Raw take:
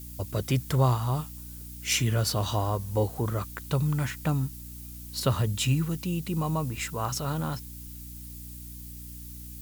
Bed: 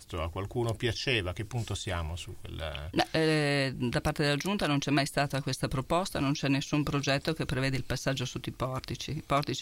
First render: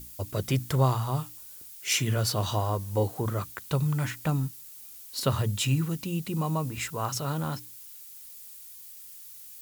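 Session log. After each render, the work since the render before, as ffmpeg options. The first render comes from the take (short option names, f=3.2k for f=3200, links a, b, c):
-af "bandreject=f=60:t=h:w=6,bandreject=f=120:t=h:w=6,bandreject=f=180:t=h:w=6,bandreject=f=240:t=h:w=6,bandreject=f=300:t=h:w=6"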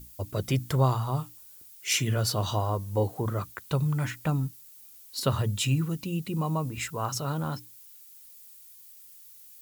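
-af "afftdn=nr=6:nf=-46"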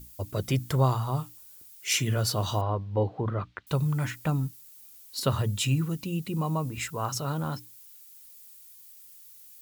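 -filter_complex "[0:a]asettb=1/sr,asplit=3[a][b][c];[a]atrim=end=2.614[d];[b]atrim=start=2.61:end=3.67,asetpts=PTS-STARTPTS,afade=t=in:d=0.004:c=qsin,afade=t=out:st=1.056:d=0.004:c=qsin,lowpass=f=3.6k:w=0.5412,lowpass=f=3.6k:w=1.3066[e];[c]atrim=start=3.666[f];[d][e]acrossfade=d=0.004:c1=hsin:c2=qsin[g];[g][f]acrossfade=d=0.004:c1=qsin:c2=hsin"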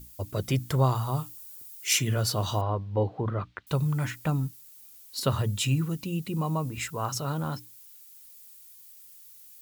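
-filter_complex "[0:a]asettb=1/sr,asplit=3[a][b][c];[a]atrim=end=0.954[d];[b]atrim=start=0.95:end=1.99,asetpts=PTS-STARTPTS,afade=t=in:d=0.004:c=qsin,afade=t=out:st=1.036:d=0.004:c=qsin,highshelf=f=6.6k:g=5.5[e];[c]atrim=start=1.986[f];[d][e]acrossfade=d=0.004:c1=hsin:c2=qsin[g];[g][f]acrossfade=d=0.004:c1=qsin:c2=hsin"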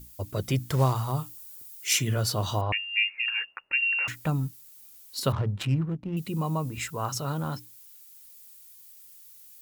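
-filter_complex "[0:a]asettb=1/sr,asplit=3[a][b][c];[a]atrim=end=0.694[d];[b]atrim=start=0.69:end=1.12,asetpts=PTS-STARTPTS,afade=t=in:d=0.004:c=qsin,afade=t=out:st=0.426:d=0.004:c=qsin,acrusher=bits=5:mode=log:mix=0:aa=0.000001[e];[c]atrim=start=1.116[f];[d][e]acrossfade=d=0.004:c1=hsin:c2=qsin[g];[g][f]acrossfade=d=0.004:c1=qsin:c2=hsin,asettb=1/sr,asplit=3[h][i][j];[h]atrim=end=2.724[k];[i]atrim=start=2.72:end=4.08,asetpts=PTS-STARTPTS,afade=t=in:d=0.004:c=qsin,afade=t=out:st=1.356:d=0.004:c=qsin,lowpass=f=2.5k:t=q:w=0.5098,lowpass=f=2.5k:t=q:w=0.6013,lowpass=f=2.5k:t=q:w=0.9,lowpass=f=2.5k:t=q:w=2.563,afreqshift=-2900[l];[j]atrim=start=4.076[m];[k][l]acrossfade=d=0.004:c1=hsin:c2=qsin[n];[n][m]acrossfade=d=0.004:c1=qsin:c2=hsin,asettb=1/sr,asplit=3[o][p][q];[o]atrim=end=5.324[r];[p]atrim=start=5.32:end=6.17,asetpts=PTS-STARTPTS,afade=t=in:d=0.004:c=qsin,afade=t=out:st=0.846:d=0.004:c=qsin,adynamicsmooth=sensitivity=3.5:basefreq=510[s];[q]atrim=start=6.166[t];[r][s]acrossfade=d=0.004:c1=hsin:c2=qsin[u];[u][t]acrossfade=d=0.004:c1=qsin:c2=hsin"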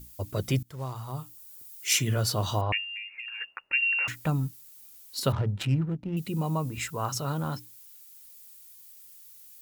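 -filter_complex "[0:a]asplit=3[a][b][c];[a]afade=t=out:st=2.84:d=0.02[d];[b]acompressor=threshold=-35dB:ratio=12:attack=3.2:release=140:knee=1:detection=peak,afade=t=in:st=2.84:d=0.02,afade=t=out:st=3.4:d=0.02[e];[c]afade=t=in:st=3.4:d=0.02[f];[d][e][f]amix=inputs=3:normalize=0,asettb=1/sr,asplit=3[g][h][i];[g]atrim=end=5.274[j];[h]atrim=start=5.27:end=6.5,asetpts=PTS-STARTPTS,afade=t=in:d=0.004:c=qsin,afade=t=out:st=1.226:d=0.004:c=qsin,bandreject=f=1.1k:w=9[k];[i]atrim=start=6.496[l];[j][k]acrossfade=d=0.004:c1=hsin:c2=qsin[m];[m][l]acrossfade=d=0.004:c1=qsin:c2=hsin,asplit=2[n][o];[n]atrim=end=0.63,asetpts=PTS-STARTPTS,afade=t=out:st=0.626:d=0.004:c=hsin:silence=0.0794328[p];[o]atrim=start=0.63,asetpts=PTS-STARTPTS,afade=t=in:d=1.26:silence=0.0794328[q];[p][q]concat=n=2:v=0:a=1"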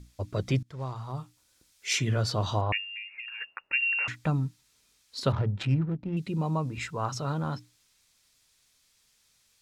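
-af "lowpass=5k,bandreject=f=2.9k:w=17"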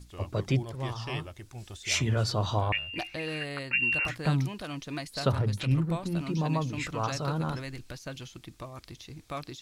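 -filter_complex "[1:a]volume=-9.5dB[a];[0:a][a]amix=inputs=2:normalize=0"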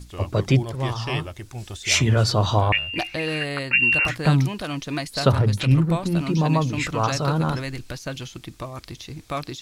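-af "volume=8.5dB"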